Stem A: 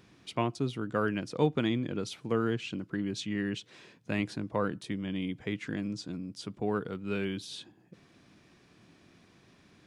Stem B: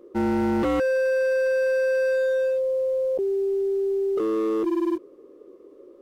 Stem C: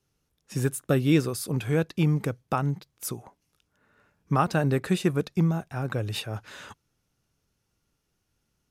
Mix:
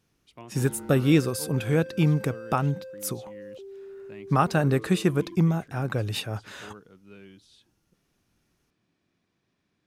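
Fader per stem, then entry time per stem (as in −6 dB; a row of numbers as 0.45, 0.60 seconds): −15.5, −18.5, +1.5 decibels; 0.00, 0.40, 0.00 seconds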